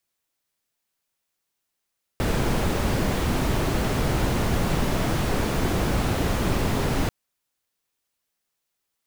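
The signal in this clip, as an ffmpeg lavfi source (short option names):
-f lavfi -i "anoisesrc=c=brown:a=0.351:d=4.89:r=44100:seed=1"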